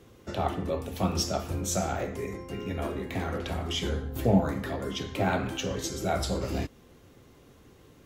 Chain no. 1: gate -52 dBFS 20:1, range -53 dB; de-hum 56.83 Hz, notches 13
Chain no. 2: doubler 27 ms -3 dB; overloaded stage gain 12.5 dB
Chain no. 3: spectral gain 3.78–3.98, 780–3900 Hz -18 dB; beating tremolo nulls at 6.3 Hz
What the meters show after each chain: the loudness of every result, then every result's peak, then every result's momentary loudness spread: -31.0, -29.0, -34.0 LUFS; -12.0, -12.5, -14.5 dBFS; 9, 8, 7 LU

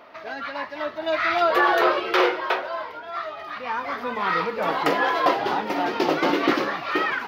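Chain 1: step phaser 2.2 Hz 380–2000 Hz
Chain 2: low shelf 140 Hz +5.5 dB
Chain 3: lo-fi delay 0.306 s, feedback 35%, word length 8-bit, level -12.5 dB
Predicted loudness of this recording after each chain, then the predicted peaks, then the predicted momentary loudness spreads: -26.5, -23.0, -23.0 LUFS; -9.5, -7.5, -7.0 dBFS; 13, 13, 12 LU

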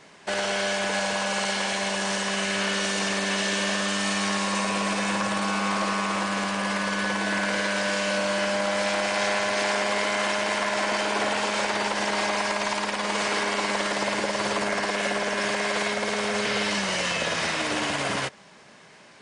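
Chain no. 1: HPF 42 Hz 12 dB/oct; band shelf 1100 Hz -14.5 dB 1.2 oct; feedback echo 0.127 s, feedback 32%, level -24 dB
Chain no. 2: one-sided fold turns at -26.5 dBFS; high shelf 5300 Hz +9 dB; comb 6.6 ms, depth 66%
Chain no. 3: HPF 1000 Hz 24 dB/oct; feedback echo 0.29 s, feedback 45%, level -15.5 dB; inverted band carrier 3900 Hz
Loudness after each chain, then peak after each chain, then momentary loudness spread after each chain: -27.0, -23.0, -27.5 LUFS; -14.5, -10.5, -14.5 dBFS; 3, 2, 2 LU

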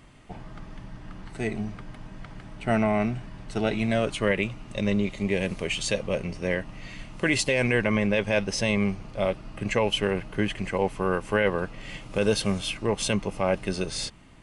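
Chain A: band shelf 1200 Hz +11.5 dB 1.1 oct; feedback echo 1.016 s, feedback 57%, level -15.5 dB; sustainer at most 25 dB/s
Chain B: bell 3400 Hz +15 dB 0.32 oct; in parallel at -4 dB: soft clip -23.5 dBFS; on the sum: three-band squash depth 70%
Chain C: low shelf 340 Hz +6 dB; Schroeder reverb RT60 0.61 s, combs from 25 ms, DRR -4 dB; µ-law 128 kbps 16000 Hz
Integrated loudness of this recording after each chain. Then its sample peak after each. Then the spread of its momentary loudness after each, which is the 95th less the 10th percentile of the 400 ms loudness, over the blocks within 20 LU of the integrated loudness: -22.5, -23.0, -19.5 LUFS; -5.0, -6.0, -2.5 dBFS; 19, 9, 19 LU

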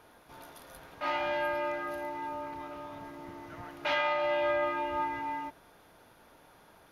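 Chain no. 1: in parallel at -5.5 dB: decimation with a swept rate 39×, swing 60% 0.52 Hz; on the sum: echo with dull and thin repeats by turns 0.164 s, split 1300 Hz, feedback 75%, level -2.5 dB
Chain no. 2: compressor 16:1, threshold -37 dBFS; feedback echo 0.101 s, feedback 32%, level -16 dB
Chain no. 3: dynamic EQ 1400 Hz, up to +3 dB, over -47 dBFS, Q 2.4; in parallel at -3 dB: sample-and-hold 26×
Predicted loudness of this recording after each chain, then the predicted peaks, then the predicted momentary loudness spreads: -29.0, -42.0, -30.0 LUFS; -13.0, -28.0, -13.5 dBFS; 21, 18, 20 LU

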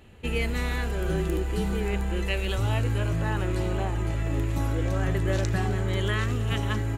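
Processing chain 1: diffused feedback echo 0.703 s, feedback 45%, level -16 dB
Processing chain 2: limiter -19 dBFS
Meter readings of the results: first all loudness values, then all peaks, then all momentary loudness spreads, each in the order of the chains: -27.5, -29.0 LUFS; -10.5, -19.0 dBFS; 3, 1 LU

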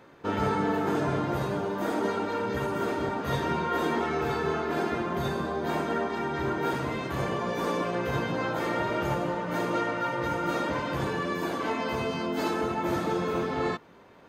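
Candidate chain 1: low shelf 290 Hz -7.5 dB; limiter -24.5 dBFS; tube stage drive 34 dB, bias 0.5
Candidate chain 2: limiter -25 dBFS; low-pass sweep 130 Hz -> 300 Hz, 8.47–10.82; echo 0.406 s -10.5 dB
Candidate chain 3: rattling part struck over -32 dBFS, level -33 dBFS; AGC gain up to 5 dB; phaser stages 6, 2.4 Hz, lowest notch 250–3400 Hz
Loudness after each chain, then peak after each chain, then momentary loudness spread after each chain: -38.0, -35.5, -26.5 LUFS; -31.5, -20.0, -11.5 dBFS; 1, 10, 3 LU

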